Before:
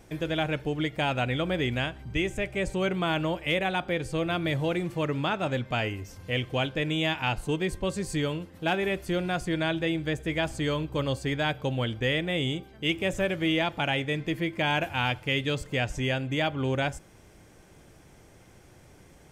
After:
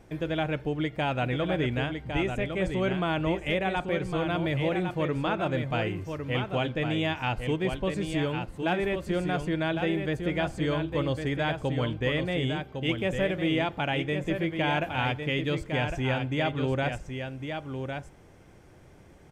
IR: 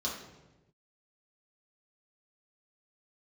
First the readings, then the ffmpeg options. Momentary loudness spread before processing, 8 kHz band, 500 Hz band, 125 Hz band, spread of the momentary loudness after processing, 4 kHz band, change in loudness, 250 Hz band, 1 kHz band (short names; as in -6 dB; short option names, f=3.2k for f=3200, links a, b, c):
4 LU, -7.0 dB, +0.5 dB, +1.0 dB, 4 LU, -3.5 dB, -0.5 dB, +1.0 dB, 0.0 dB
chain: -af "highshelf=f=3.4k:g=-9.5,aecho=1:1:1106:0.473"